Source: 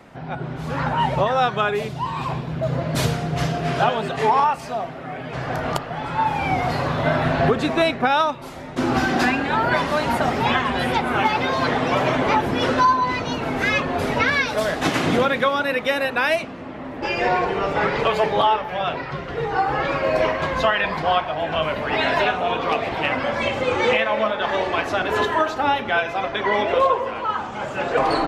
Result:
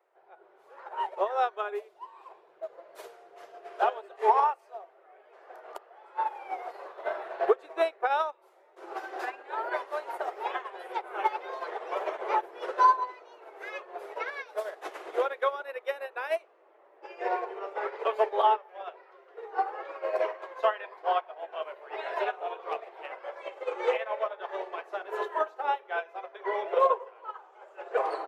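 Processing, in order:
elliptic high-pass filter 380 Hz, stop band 40 dB
parametric band 4,600 Hz −10.5 dB 2.6 octaves
expander for the loud parts 2.5 to 1, over −30 dBFS

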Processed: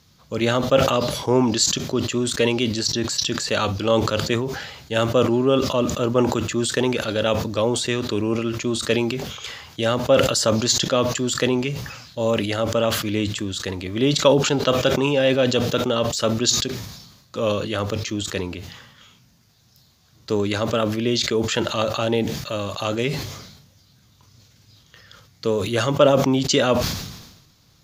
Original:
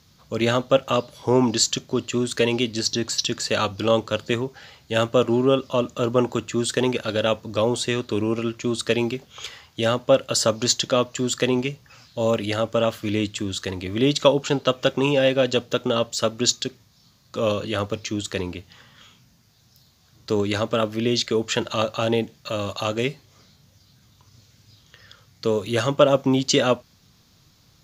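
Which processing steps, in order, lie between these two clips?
level that may fall only so fast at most 53 dB per second

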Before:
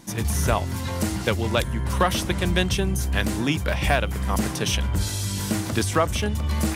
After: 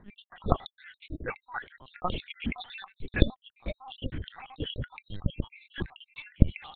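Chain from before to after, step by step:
time-frequency cells dropped at random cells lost 76%
0:01.26–0:01.99: high-pass filter 440 Hz 12 dB per octave
linear-prediction vocoder at 8 kHz pitch kept
level −6.5 dB

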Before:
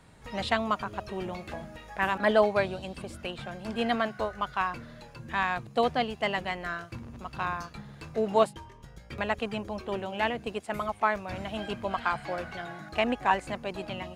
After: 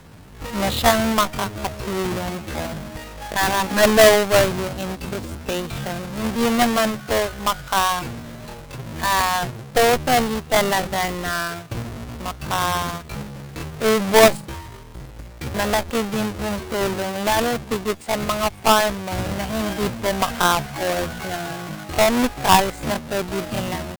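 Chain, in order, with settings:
each half-wave held at its own peak
harmonic generator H 3 −45 dB, 4 −11 dB, 5 −32 dB, 6 −25 dB, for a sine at −9 dBFS
tempo change 0.59×
level +6 dB

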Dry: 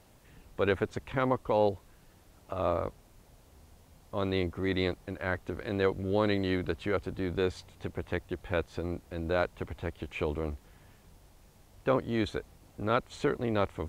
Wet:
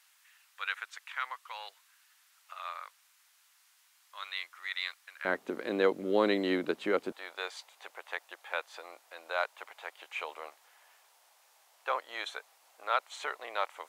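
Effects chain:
high-pass filter 1,300 Hz 24 dB per octave, from 0:05.25 230 Hz, from 0:07.12 720 Hz
level +1.5 dB

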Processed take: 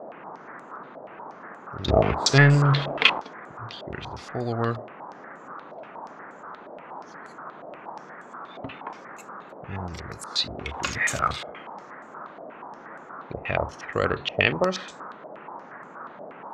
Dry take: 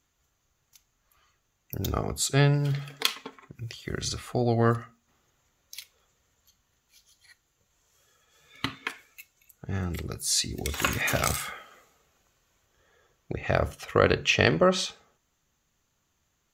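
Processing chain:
noise in a band 160–1,400 Hz −41 dBFS
0:01.88–0:03.20: leveller curve on the samples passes 3
low-pass on a step sequencer 8.4 Hz 640–7,800 Hz
level −4 dB

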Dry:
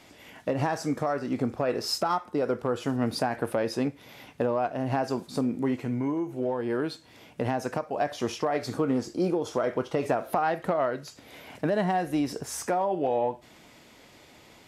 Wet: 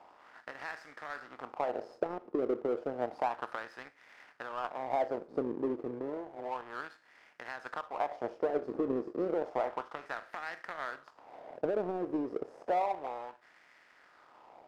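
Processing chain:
compressor on every frequency bin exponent 0.6
LFO wah 0.31 Hz 370–1,900 Hz, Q 3
power curve on the samples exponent 1.4

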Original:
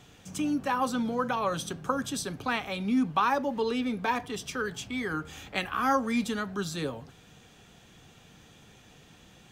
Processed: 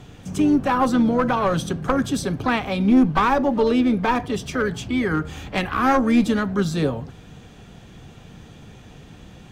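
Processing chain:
asymmetric clip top −25.5 dBFS
spectral tilt −2 dB per octave
pitch-shifted copies added +5 semitones −15 dB
level +8 dB

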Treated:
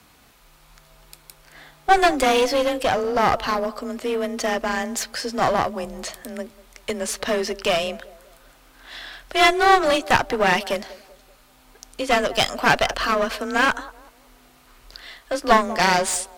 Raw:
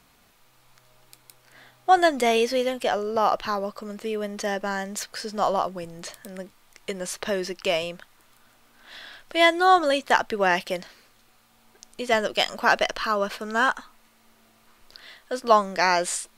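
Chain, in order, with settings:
frequency shifter +28 Hz
feedback echo with a band-pass in the loop 193 ms, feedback 41%, band-pass 500 Hz, level −19 dB
asymmetric clip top −26.5 dBFS
level +5.5 dB

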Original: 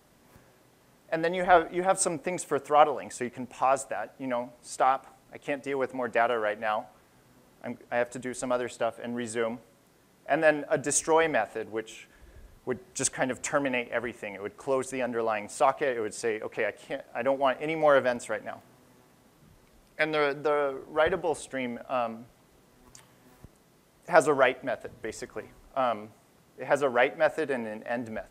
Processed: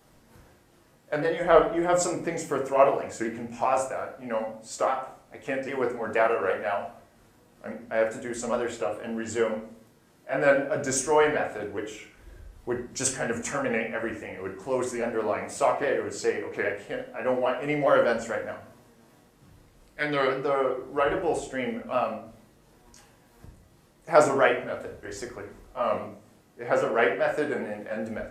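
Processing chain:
pitch shifter swept by a sawtooth −2 semitones, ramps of 406 ms
rectangular room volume 61 cubic metres, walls mixed, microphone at 0.61 metres

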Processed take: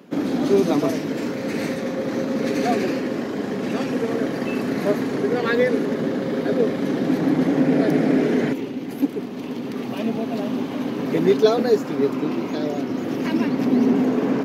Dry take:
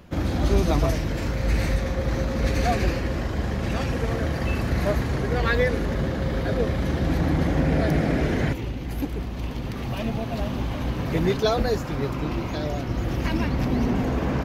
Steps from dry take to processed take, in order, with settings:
high-pass filter 170 Hz 24 dB per octave
hollow resonant body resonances 270/410 Hz, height 10 dB, ringing for 40 ms

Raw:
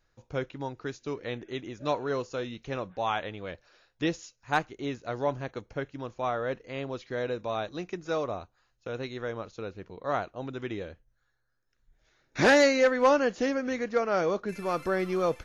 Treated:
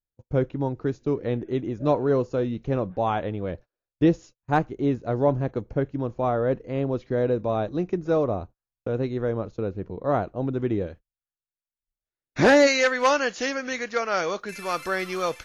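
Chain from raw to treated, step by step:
noise gate −49 dBFS, range −33 dB
tilt shelving filter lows +9.5 dB, from 0:10.86 lows +3 dB, from 0:12.66 lows −7 dB
level +3 dB

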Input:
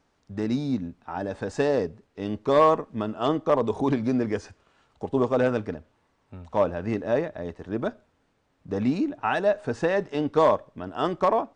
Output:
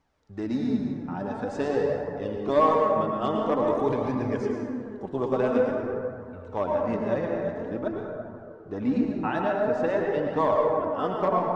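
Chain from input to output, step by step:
dense smooth reverb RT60 2.5 s, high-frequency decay 0.35×, pre-delay 90 ms, DRR −0.5 dB
flanger 0.48 Hz, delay 0.9 ms, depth 5.1 ms, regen +43%
high-shelf EQ 4,200 Hz −5 dB, from 0:07.79 −11 dB

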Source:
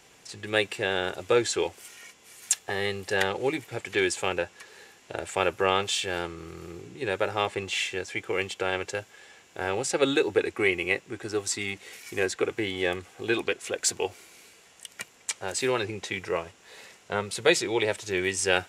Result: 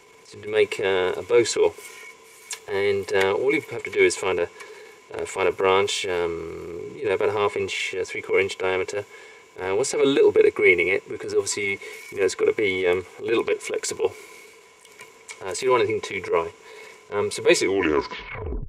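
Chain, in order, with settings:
turntable brake at the end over 1.10 s
hollow resonant body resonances 430/1,000/2,200 Hz, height 16 dB, ringing for 45 ms
transient designer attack −11 dB, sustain +3 dB

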